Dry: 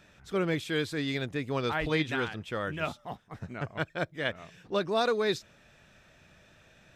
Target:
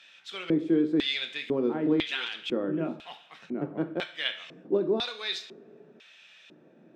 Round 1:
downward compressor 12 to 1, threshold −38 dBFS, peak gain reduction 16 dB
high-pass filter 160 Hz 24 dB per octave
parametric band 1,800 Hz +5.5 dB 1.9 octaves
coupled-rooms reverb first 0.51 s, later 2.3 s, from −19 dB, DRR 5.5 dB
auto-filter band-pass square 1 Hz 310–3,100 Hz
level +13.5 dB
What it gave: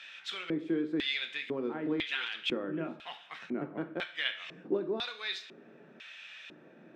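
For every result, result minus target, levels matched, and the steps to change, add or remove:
downward compressor: peak gain reduction +8.5 dB; 2,000 Hz band +5.0 dB
change: downward compressor 12 to 1, threshold −28.5 dBFS, peak gain reduction 7 dB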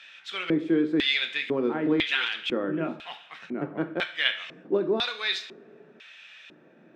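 2,000 Hz band +5.0 dB
change: parametric band 1,800 Hz −2.5 dB 1.9 octaves

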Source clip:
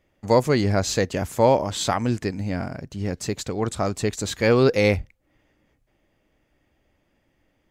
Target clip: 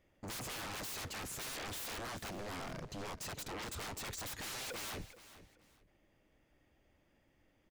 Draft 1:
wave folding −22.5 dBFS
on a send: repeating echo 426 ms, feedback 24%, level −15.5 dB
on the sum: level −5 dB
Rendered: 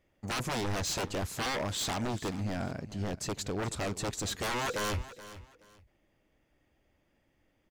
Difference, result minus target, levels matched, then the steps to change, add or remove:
wave folding: distortion −20 dB
change: wave folding −33.5 dBFS

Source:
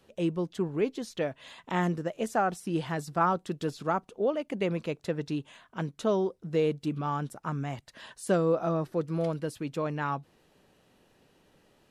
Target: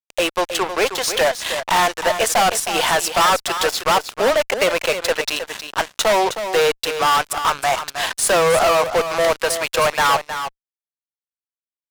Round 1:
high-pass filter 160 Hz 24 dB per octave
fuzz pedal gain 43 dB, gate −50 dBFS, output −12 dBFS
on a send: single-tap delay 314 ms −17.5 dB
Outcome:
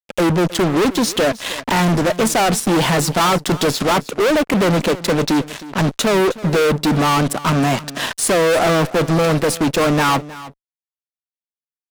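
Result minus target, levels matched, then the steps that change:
125 Hz band +16.0 dB; echo-to-direct −8 dB
change: high-pass filter 640 Hz 24 dB per octave
change: single-tap delay 314 ms −9.5 dB

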